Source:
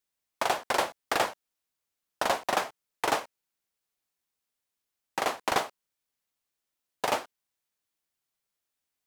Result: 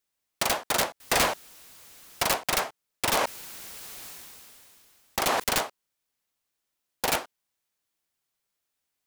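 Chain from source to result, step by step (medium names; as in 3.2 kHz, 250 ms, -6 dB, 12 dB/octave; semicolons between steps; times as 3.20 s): integer overflow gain 20 dB; 1.00–2.23 s: power-law waveshaper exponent 0.5; 3.11–5.44 s: decay stretcher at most 21 dB/s; trim +3 dB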